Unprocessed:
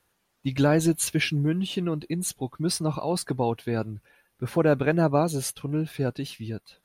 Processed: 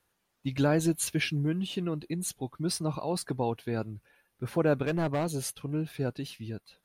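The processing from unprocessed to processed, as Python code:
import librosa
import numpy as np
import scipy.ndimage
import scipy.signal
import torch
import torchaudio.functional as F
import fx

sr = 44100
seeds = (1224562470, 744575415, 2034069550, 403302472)

y = fx.overload_stage(x, sr, gain_db=19.5, at=(4.86, 5.43))
y = F.gain(torch.from_numpy(y), -4.5).numpy()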